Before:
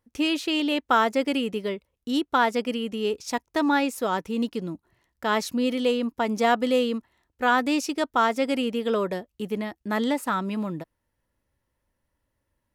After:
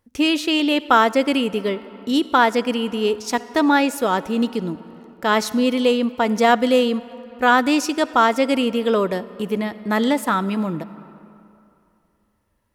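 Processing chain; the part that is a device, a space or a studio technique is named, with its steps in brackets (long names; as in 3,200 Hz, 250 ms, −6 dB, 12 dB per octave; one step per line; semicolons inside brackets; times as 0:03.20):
compressed reverb return (on a send at −13.5 dB: convolution reverb RT60 2.6 s, pre-delay 48 ms + downward compressor, threshold −25 dBFS, peak gain reduction 8 dB)
on the sum: level +6 dB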